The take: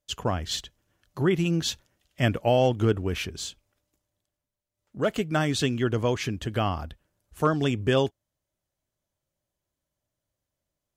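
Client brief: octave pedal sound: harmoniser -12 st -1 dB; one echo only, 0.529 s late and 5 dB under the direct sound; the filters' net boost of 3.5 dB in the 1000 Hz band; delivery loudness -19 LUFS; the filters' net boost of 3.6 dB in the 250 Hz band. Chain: bell 250 Hz +4.5 dB; bell 1000 Hz +4.5 dB; echo 0.529 s -5 dB; harmoniser -12 st -1 dB; gain +3.5 dB

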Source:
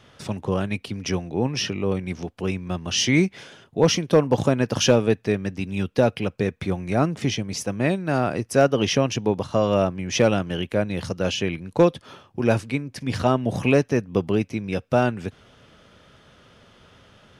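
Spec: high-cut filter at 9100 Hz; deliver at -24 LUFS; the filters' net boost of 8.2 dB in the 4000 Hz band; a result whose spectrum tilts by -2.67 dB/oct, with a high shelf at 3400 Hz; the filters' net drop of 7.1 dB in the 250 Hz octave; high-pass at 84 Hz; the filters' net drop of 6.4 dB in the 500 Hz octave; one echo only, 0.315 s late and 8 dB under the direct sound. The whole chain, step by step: HPF 84 Hz; LPF 9100 Hz; bell 250 Hz -8 dB; bell 500 Hz -6 dB; high shelf 3400 Hz +7.5 dB; bell 4000 Hz +6.5 dB; echo 0.315 s -8 dB; gain -1 dB

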